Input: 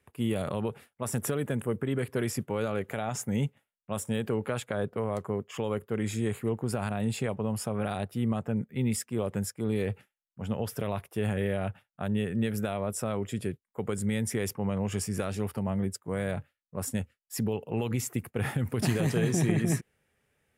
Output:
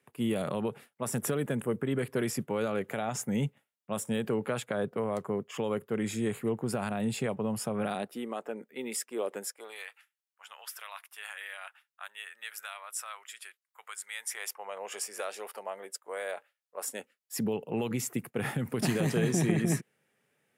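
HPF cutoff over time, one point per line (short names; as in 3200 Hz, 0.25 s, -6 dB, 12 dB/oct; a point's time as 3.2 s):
HPF 24 dB/oct
7.83 s 130 Hz
8.28 s 330 Hz
9.4 s 330 Hz
9.89 s 1100 Hz
14.07 s 1100 Hz
14.86 s 510 Hz
16.77 s 510 Hz
17.45 s 140 Hz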